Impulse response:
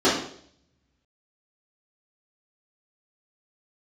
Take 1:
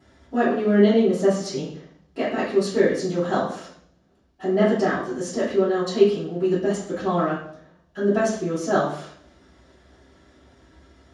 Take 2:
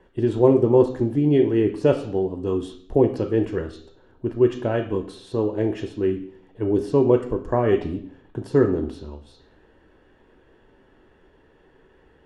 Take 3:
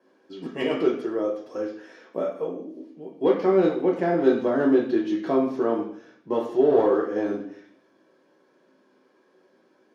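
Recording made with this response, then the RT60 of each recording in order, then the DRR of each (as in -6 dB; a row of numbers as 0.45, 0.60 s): 1; 0.60, 0.60, 0.60 s; -11.5, 5.5, -2.5 dB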